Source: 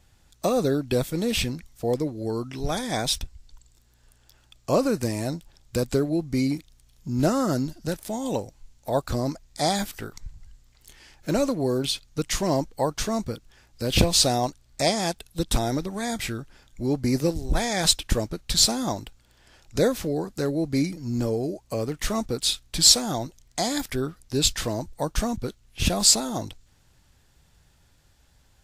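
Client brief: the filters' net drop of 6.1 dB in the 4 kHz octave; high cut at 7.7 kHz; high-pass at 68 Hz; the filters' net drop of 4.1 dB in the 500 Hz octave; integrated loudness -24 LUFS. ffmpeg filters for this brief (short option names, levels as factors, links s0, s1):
-af "highpass=68,lowpass=7700,equalizer=f=500:t=o:g=-5,equalizer=f=4000:t=o:g=-7,volume=1.68"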